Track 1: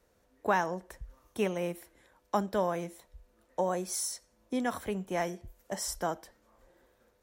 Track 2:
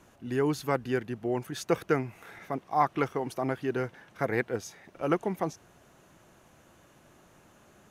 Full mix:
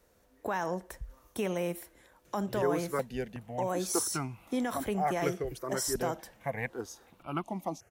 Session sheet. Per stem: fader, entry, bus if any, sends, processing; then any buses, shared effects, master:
+2.5 dB, 0.00 s, no send, treble shelf 11 kHz +6.5 dB; peak limiter -25.5 dBFS, peak gain reduction 10.5 dB
-2.0 dB, 2.25 s, no send, stepped phaser 2.7 Hz 240–1800 Hz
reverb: none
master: none

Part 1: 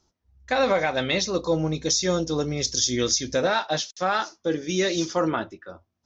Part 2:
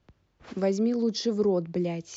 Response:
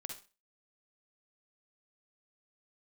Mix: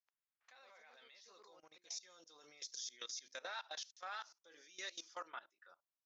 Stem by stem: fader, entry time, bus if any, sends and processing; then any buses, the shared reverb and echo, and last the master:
1.79 s -20.5 dB -> 2.48 s -10.5 dB, 0.00 s, no send, none
-14.5 dB, 0.00 s, no send, band-pass filter 1.7 kHz, Q 0.57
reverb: none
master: high-pass 1.1 kHz 12 dB/octave; level held to a coarse grid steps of 21 dB; peak limiter -35.5 dBFS, peak gain reduction 9.5 dB

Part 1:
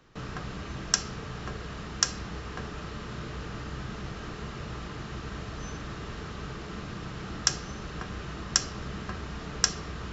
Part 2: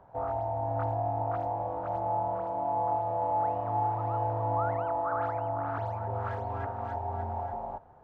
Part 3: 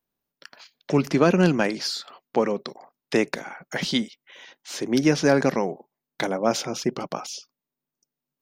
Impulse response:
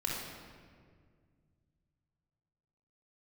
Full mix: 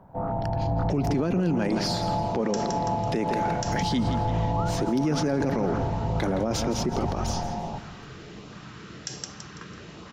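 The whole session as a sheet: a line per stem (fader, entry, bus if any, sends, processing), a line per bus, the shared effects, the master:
-4.0 dB, 1.60 s, send -14 dB, echo send -7.5 dB, high-pass 120 Hz; LFO notch saw up 1.3 Hz 350–1900 Hz
0.0 dB, 0.00 s, send -16.5 dB, no echo send, octave divider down 1 oct, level +3 dB; peaking EQ 180 Hz +11.5 dB 0.92 oct
-1.0 dB, 0.00 s, no send, echo send -13 dB, bass shelf 470 Hz +11.5 dB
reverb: on, RT60 1.9 s, pre-delay 24 ms
echo: feedback delay 166 ms, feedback 37%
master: peak limiter -17 dBFS, peak gain reduction 17.5 dB

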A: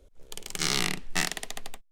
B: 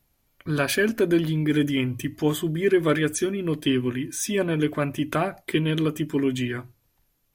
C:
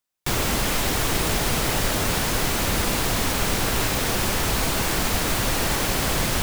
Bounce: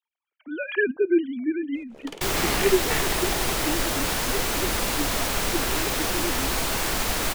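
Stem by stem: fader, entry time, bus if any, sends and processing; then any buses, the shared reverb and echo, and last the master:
-9.0 dB, 1.75 s, no send, overdrive pedal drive 31 dB, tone 1.3 kHz, clips at -5 dBFS
1.30 s -0.5 dB -> 1.84 s -7.5 dB, 0.00 s, no send, formants replaced by sine waves
-1.5 dB, 1.95 s, no send, peaking EQ 120 Hz -6.5 dB 2.2 oct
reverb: none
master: none

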